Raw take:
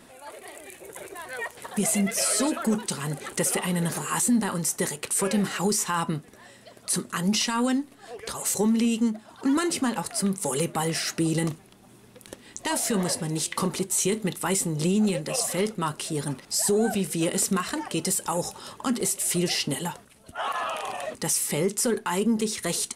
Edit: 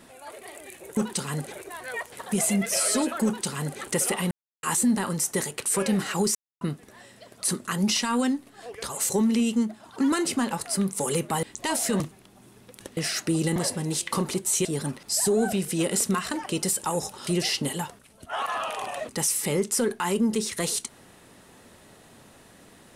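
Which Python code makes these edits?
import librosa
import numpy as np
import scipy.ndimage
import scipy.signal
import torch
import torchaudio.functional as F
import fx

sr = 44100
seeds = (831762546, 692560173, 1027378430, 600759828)

y = fx.edit(x, sr, fx.duplicate(start_s=2.7, length_s=0.55, to_s=0.97),
    fx.silence(start_s=3.76, length_s=0.32),
    fx.silence(start_s=5.8, length_s=0.26),
    fx.swap(start_s=10.88, length_s=0.59, other_s=12.44, other_length_s=0.57),
    fx.cut(start_s=14.1, length_s=1.97),
    fx.cut(start_s=18.69, length_s=0.64), tone=tone)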